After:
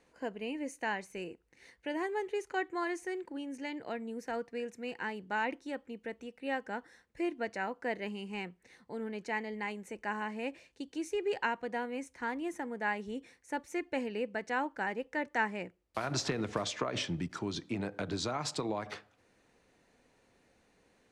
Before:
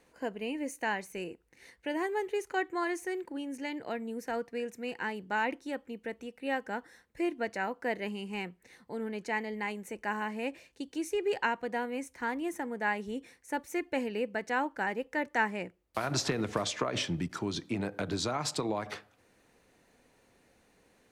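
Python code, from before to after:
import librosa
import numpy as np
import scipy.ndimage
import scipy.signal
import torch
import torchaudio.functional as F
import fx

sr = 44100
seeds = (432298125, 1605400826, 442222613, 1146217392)

y = scipy.signal.sosfilt(scipy.signal.butter(2, 8700.0, 'lowpass', fs=sr, output='sos'), x)
y = F.gain(torch.from_numpy(y), -2.5).numpy()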